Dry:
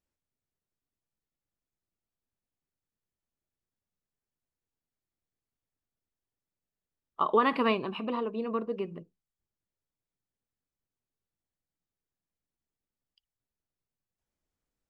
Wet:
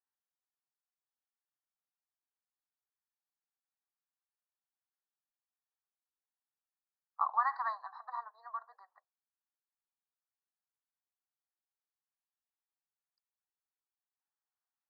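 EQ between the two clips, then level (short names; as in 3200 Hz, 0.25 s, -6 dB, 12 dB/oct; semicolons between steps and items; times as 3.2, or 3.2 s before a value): Chebyshev high-pass 740 Hz, order 6; Chebyshev band-stop 1900–4000 Hz, order 5; air absorption 290 m; -1.0 dB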